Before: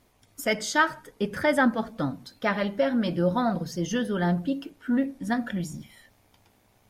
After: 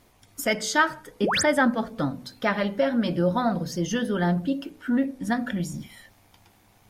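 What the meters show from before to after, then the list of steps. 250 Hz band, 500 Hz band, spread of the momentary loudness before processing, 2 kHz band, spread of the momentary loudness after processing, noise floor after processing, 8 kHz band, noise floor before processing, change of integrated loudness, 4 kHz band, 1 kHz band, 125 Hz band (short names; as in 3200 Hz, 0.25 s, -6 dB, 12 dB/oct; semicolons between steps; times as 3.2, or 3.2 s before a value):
+1.5 dB, +1.5 dB, 9 LU, +1.5 dB, 9 LU, -59 dBFS, +5.0 dB, -64 dBFS, +1.5 dB, +4.0 dB, +1.5 dB, +1.5 dB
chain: de-hum 62.44 Hz, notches 10; in parallel at -2 dB: compressor, threshold -35 dBFS, peak gain reduction 18 dB; on the sum: painted sound rise, 1.23–1.43, 220–10000 Hz -24 dBFS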